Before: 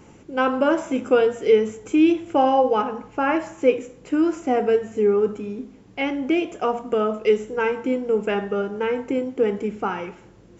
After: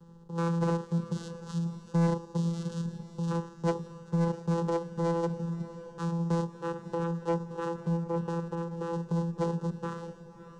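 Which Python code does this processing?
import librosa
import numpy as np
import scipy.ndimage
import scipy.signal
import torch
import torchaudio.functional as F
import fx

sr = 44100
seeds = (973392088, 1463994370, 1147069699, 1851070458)

y = fx.block_float(x, sr, bits=3)
y = fx.spec_erase(y, sr, start_s=0.94, length_s=2.36, low_hz=350.0, high_hz=2200.0)
y = fx.cheby1_lowpass(y, sr, hz=2900.0, order=2, at=(6.5, 8.93))
y = fx.vocoder(y, sr, bands=4, carrier='saw', carrier_hz=168.0)
y = fx.dmg_noise_colour(y, sr, seeds[0], colour='brown', level_db=-61.0)
y = fx.fixed_phaser(y, sr, hz=450.0, stages=8)
y = 10.0 ** (-17.5 / 20.0) * np.tanh(y / 10.0 ** (-17.5 / 20.0))
y = fx.echo_diffused(y, sr, ms=596, feedback_pct=44, wet_db=-13)
y = y * 10.0 ** (-3.0 / 20.0)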